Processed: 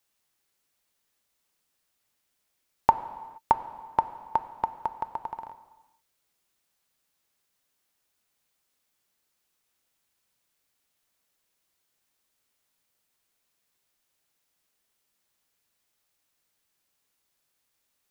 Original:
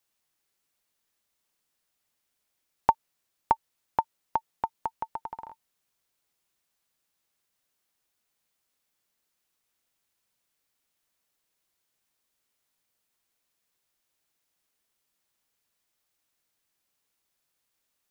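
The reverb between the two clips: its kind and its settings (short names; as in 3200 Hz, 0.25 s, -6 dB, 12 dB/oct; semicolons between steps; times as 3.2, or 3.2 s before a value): non-linear reverb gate 0.5 s falling, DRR 11 dB; gain +2 dB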